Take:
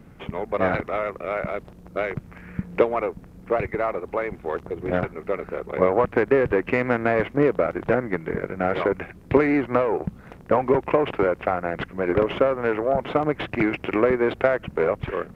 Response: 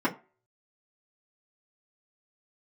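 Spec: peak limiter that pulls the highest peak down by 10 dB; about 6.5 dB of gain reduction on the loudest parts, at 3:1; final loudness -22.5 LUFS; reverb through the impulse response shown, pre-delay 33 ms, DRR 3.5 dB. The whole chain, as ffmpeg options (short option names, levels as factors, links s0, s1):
-filter_complex "[0:a]acompressor=threshold=0.0794:ratio=3,alimiter=limit=0.126:level=0:latency=1,asplit=2[s0][s1];[1:a]atrim=start_sample=2205,adelay=33[s2];[s1][s2]afir=irnorm=-1:irlink=0,volume=0.178[s3];[s0][s3]amix=inputs=2:normalize=0,volume=1.88"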